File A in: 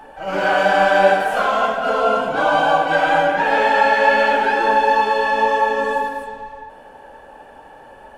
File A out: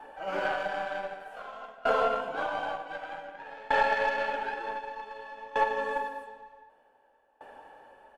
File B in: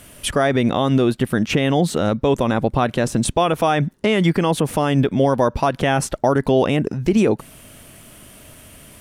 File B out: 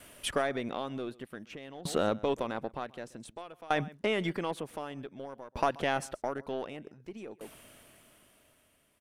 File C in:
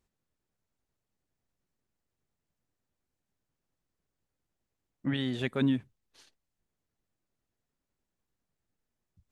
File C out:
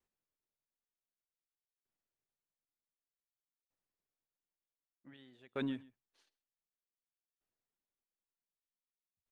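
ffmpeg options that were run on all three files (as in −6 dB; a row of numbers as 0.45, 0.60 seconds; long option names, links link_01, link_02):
-af "bass=frequency=250:gain=-9,treble=frequency=4000:gain=-4,aecho=1:1:131:0.1,aeval=exprs='0.944*(cos(1*acos(clip(val(0)/0.944,-1,1)))-cos(1*PI/2))+0.168*(cos(2*acos(clip(val(0)/0.944,-1,1)))-cos(2*PI/2))+0.0335*(cos(7*acos(clip(val(0)/0.944,-1,1)))-cos(7*PI/2))':channel_layout=same,alimiter=limit=-8.5dB:level=0:latency=1:release=487,aeval=exprs='val(0)*pow(10,-23*if(lt(mod(0.54*n/s,1),2*abs(0.54)/1000),1-mod(0.54*n/s,1)/(2*abs(0.54)/1000),(mod(0.54*n/s,1)-2*abs(0.54)/1000)/(1-2*abs(0.54)/1000))/20)':channel_layout=same,volume=-3dB"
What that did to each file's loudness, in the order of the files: −14.5, −16.0, −10.0 LU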